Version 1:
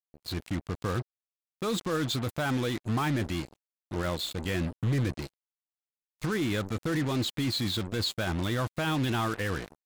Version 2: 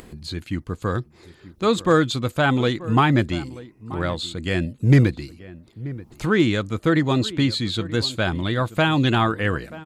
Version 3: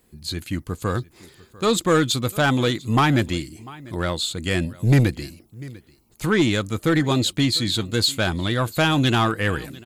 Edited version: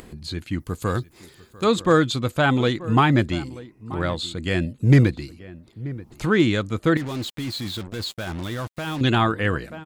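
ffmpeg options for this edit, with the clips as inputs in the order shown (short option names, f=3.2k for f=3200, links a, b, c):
-filter_complex "[1:a]asplit=3[a][b][c];[a]atrim=end=0.602[d];[2:a]atrim=start=0.598:end=1.642[e];[b]atrim=start=1.638:end=6.972[f];[0:a]atrim=start=6.968:end=9.012[g];[c]atrim=start=9.008[h];[d][e]acrossfade=d=0.004:c1=hsin:c2=hsin[i];[i][f]acrossfade=d=0.004:c1=hsin:c2=hsin[j];[j][g]acrossfade=d=0.004:c1=hsin:c2=hsin[k];[k][h]acrossfade=d=0.004:c1=hsin:c2=hsin"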